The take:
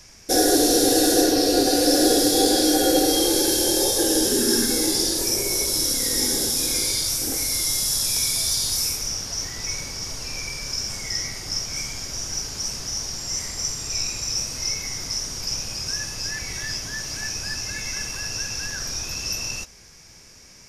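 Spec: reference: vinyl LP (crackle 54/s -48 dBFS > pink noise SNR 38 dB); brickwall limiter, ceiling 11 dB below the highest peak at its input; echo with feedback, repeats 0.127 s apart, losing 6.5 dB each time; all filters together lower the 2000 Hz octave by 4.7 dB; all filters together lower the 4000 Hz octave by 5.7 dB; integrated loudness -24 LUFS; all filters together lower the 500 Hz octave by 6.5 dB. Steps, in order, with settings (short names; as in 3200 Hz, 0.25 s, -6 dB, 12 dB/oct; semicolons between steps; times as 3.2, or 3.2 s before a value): bell 500 Hz -8 dB; bell 2000 Hz -3.5 dB; bell 4000 Hz -8 dB; limiter -20 dBFS; feedback echo 0.127 s, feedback 47%, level -6.5 dB; crackle 54/s -48 dBFS; pink noise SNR 38 dB; gain +4 dB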